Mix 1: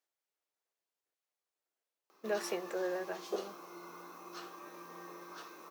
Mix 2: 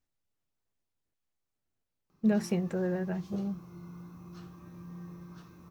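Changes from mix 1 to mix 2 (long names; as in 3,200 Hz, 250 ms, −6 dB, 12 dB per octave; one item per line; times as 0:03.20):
background −9.5 dB
master: remove high-pass filter 400 Hz 24 dB per octave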